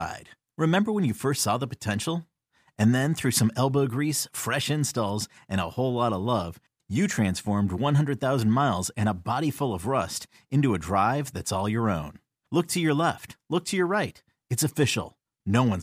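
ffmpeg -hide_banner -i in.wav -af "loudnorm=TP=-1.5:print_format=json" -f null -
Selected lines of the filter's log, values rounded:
"input_i" : "-26.2",
"input_tp" : "-8.1",
"input_lra" : "1.1",
"input_thresh" : "-36.6",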